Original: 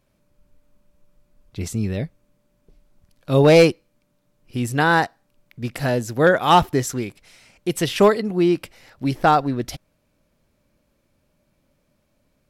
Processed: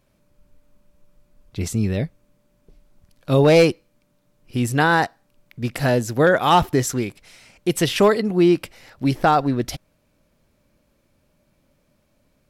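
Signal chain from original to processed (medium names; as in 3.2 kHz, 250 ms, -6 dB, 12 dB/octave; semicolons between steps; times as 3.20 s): loudness maximiser +8.5 dB; trim -6 dB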